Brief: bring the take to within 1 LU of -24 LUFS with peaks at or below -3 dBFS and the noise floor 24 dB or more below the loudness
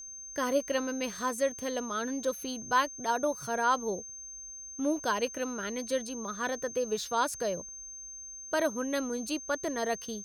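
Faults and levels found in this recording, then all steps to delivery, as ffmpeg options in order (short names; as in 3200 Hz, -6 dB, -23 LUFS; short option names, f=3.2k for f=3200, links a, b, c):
steady tone 6300 Hz; tone level -42 dBFS; loudness -32.5 LUFS; peak -14.5 dBFS; loudness target -24.0 LUFS
-> -af "bandreject=f=6.3k:w=30"
-af "volume=8.5dB"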